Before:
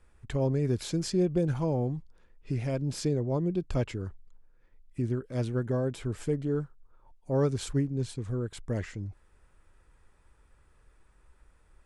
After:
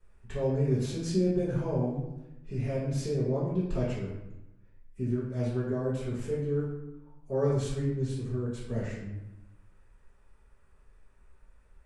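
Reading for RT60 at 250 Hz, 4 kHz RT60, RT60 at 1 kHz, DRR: 1.1 s, 0.60 s, 0.85 s, -12.0 dB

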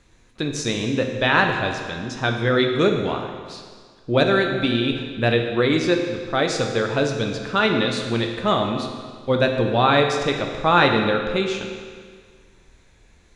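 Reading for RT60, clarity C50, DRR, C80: 1.8 s, 5.0 dB, 3.0 dB, 6.0 dB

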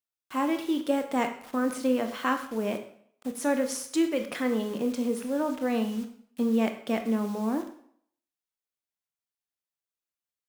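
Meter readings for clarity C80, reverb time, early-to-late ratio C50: 12.5 dB, 0.65 s, 9.5 dB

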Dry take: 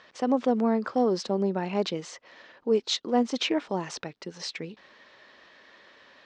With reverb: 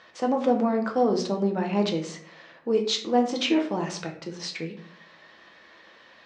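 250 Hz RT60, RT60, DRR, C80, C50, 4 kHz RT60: 0.75 s, 0.55 s, 1.5 dB, 13.0 dB, 9.5 dB, 0.35 s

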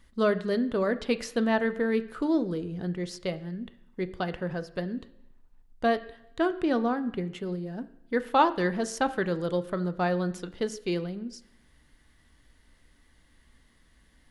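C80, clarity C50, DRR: 18.5 dB, 16.5 dB, 10.0 dB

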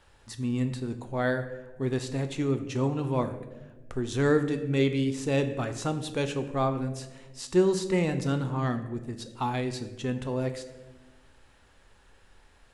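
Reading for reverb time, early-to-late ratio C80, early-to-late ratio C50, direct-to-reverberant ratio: 1.2 s, 12.5 dB, 11.0 dB, 7.5 dB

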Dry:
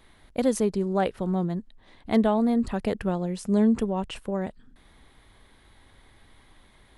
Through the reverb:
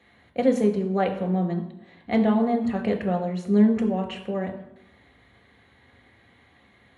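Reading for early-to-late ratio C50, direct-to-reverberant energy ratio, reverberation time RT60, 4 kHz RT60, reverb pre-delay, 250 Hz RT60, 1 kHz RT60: 9.5 dB, 2.5 dB, 0.85 s, 0.65 s, 3 ms, 0.75 s, 0.85 s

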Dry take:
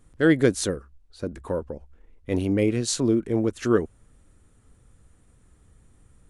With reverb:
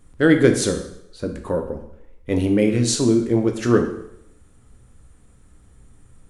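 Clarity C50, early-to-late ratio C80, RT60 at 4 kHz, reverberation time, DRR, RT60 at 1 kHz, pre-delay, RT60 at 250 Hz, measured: 8.0 dB, 11.0 dB, 0.70 s, 0.80 s, 4.5 dB, 0.75 s, 5 ms, 0.70 s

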